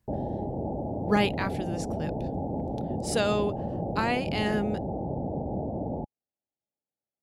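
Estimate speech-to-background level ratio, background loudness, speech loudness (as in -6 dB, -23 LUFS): 3.0 dB, -33.0 LUFS, -30.0 LUFS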